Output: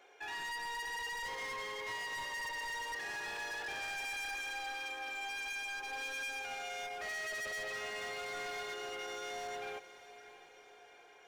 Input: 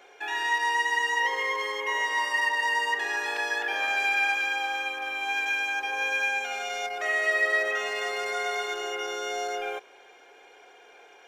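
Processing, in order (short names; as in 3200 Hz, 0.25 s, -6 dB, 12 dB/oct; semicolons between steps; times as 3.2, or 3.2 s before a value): overloaded stage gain 30.5 dB; diffused feedback echo 0.646 s, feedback 53%, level -15 dB; gain -8.5 dB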